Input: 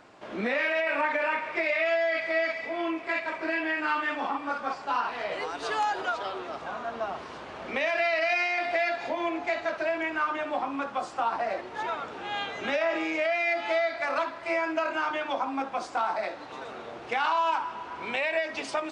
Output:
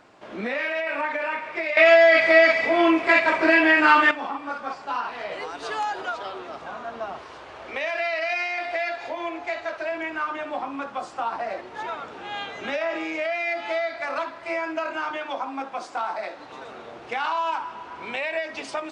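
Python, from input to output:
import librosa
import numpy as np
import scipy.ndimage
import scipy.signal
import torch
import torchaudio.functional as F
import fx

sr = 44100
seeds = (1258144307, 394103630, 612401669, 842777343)

y = fx.peak_eq(x, sr, hz=200.0, db=-11.5, octaves=0.81, at=(7.19, 9.92))
y = fx.highpass(y, sr, hz=200.0, slope=6, at=(15.17, 16.39))
y = fx.edit(y, sr, fx.clip_gain(start_s=1.77, length_s=2.34, db=12.0), tone=tone)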